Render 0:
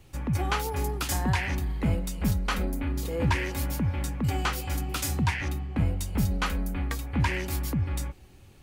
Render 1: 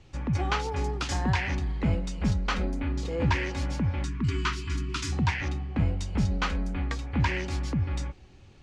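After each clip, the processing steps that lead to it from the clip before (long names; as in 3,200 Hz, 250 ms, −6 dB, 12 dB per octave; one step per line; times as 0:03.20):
low-pass filter 6,500 Hz 24 dB per octave
time-frequency box erased 0:04.05–0:05.13, 410–890 Hz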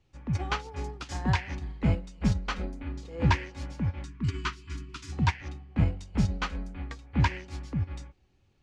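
expander for the loud parts 2.5 to 1, over −33 dBFS
level +3 dB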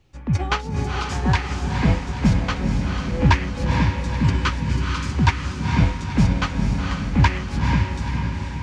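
speech leveller 2 s
feedback delay with all-pass diffusion 479 ms, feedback 58%, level −3.5 dB
level +6 dB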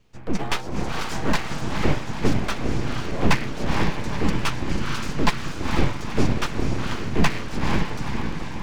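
full-wave rectification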